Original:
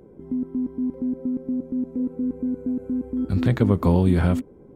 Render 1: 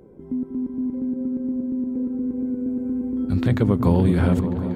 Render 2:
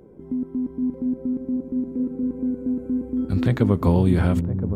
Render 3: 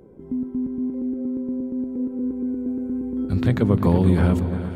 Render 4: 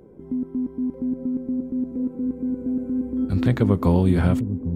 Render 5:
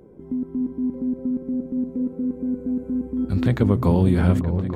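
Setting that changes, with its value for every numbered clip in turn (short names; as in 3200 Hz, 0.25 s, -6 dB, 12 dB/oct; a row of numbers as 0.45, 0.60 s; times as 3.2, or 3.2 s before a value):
repeats that get brighter, time: 0.19, 0.509, 0.117, 0.801, 0.291 s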